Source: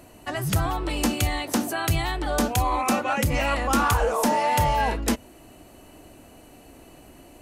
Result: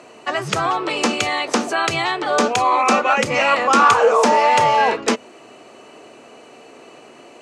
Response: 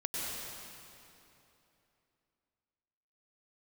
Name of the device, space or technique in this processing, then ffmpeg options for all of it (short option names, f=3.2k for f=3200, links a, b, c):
television speaker: -af "highpass=f=170:w=0.5412,highpass=f=170:w=1.3066,equalizer=f=180:t=q:w=4:g=-10,equalizer=f=290:t=q:w=4:g=-8,equalizer=f=440:t=q:w=4:g=6,equalizer=f=1.2k:t=q:w=4:g=6,equalizer=f=2.4k:t=q:w=4:g=4,lowpass=f=7.2k:w=0.5412,lowpass=f=7.2k:w=1.3066,volume=7dB"